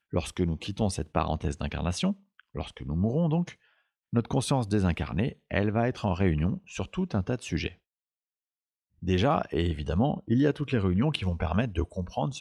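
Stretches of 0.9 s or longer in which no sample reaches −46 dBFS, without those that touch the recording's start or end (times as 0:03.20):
0:07.74–0:09.02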